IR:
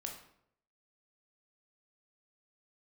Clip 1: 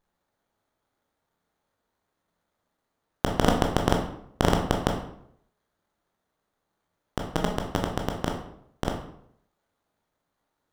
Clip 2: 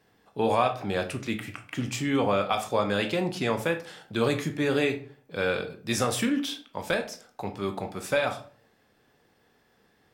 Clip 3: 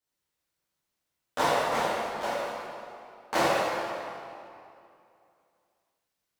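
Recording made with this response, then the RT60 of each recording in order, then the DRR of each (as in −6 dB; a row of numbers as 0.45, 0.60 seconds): 1; 0.70, 0.45, 2.6 seconds; 1.5, 6.0, −10.5 decibels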